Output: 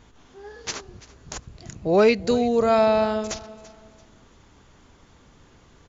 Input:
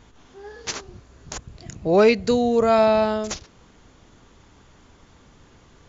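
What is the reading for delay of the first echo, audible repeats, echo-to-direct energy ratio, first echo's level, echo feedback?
0.337 s, 2, -18.5 dB, -19.0 dB, 33%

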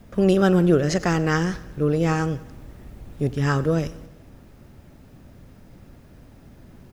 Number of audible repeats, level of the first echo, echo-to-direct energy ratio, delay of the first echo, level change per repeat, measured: 4, -19.0 dB, -17.5 dB, 92 ms, -5.0 dB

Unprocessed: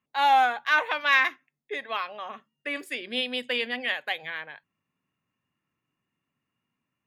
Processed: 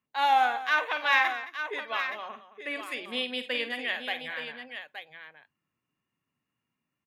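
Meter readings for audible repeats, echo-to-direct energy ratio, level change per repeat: 3, -6.5 dB, no steady repeat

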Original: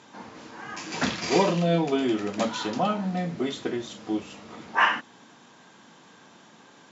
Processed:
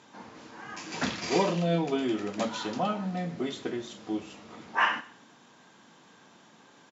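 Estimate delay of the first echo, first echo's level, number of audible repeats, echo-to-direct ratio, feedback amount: 0.123 s, -19.5 dB, 2, -19.5 dB, 23%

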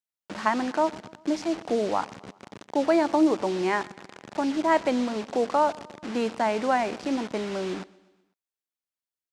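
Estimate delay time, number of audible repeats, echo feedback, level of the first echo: 0.125 s, 3, 55%, -23.0 dB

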